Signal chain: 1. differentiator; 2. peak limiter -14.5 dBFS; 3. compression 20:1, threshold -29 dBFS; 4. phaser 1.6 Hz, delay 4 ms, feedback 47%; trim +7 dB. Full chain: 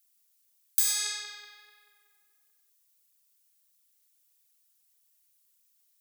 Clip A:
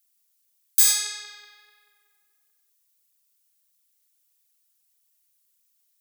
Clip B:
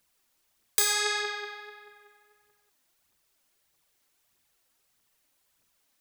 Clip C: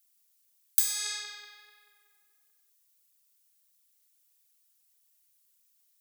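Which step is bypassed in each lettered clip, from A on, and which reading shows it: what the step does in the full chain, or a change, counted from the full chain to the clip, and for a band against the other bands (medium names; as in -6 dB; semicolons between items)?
3, mean gain reduction 2.0 dB; 1, 500 Hz band +16.0 dB; 2, crest factor change +7.5 dB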